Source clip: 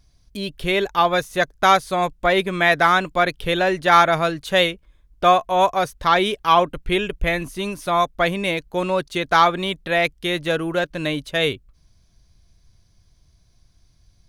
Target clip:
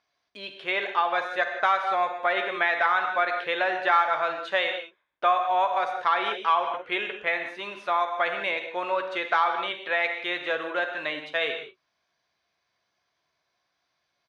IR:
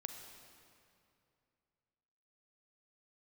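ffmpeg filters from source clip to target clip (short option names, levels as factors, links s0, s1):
-filter_complex "[0:a]highpass=760,lowpass=2400[s0];[1:a]atrim=start_sample=2205,afade=t=out:st=0.24:d=0.01,atrim=end_sample=11025[s1];[s0][s1]afir=irnorm=-1:irlink=0,acompressor=threshold=0.0562:ratio=2.5,asplit=2[s2][s3];[s3]adelay=14,volume=0.266[s4];[s2][s4]amix=inputs=2:normalize=0,volume=1.5"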